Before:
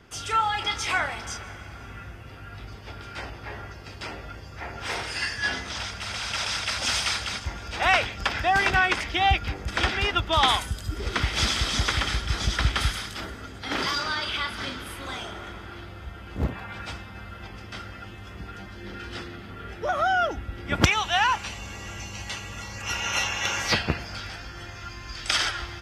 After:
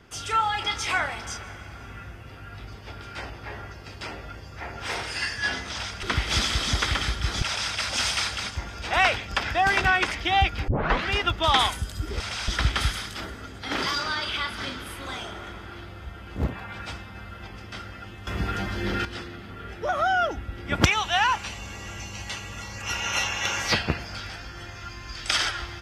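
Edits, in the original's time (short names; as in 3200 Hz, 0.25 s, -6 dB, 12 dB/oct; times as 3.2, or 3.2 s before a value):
6.03–6.31 swap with 11.09–12.48
9.57 tape start 0.41 s
18.27–19.05 gain +11 dB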